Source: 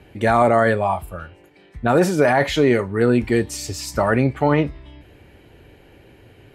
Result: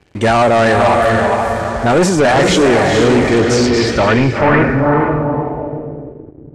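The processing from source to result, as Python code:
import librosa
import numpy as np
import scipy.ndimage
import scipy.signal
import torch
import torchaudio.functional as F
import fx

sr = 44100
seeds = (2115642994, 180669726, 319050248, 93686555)

y = fx.echo_diffused(x, sr, ms=466, feedback_pct=40, wet_db=-3)
y = fx.leveller(y, sr, passes=3)
y = fx.filter_sweep_lowpass(y, sr, from_hz=7700.0, to_hz=320.0, start_s=3.23, end_s=6.47, q=1.7)
y = y * 10.0 ** (-2.5 / 20.0)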